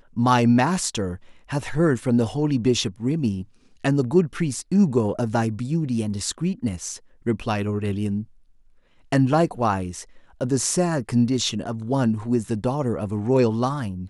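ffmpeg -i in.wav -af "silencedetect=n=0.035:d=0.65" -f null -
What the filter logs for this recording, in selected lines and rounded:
silence_start: 8.23
silence_end: 9.12 | silence_duration: 0.89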